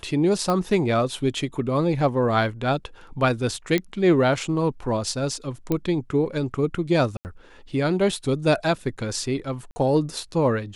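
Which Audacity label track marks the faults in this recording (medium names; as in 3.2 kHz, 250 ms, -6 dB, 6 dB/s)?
0.500000	0.500000	pop -12 dBFS
3.780000	3.780000	pop -10 dBFS
5.720000	5.720000	pop -11 dBFS
7.170000	7.250000	dropout 79 ms
9.710000	9.760000	dropout 50 ms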